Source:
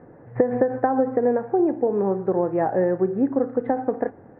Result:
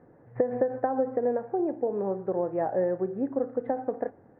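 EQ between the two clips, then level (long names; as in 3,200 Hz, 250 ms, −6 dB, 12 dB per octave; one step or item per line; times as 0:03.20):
dynamic equaliser 590 Hz, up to +6 dB, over −33 dBFS, Q 2.4
−9.0 dB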